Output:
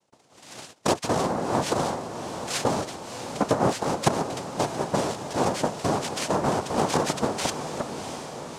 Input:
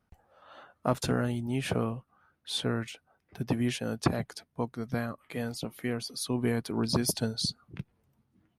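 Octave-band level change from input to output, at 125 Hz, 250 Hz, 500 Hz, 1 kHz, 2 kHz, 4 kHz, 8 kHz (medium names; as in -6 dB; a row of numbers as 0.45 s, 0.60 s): +1.0 dB, +2.5 dB, +8.5 dB, +13.5 dB, +5.5 dB, +3.0 dB, +7.0 dB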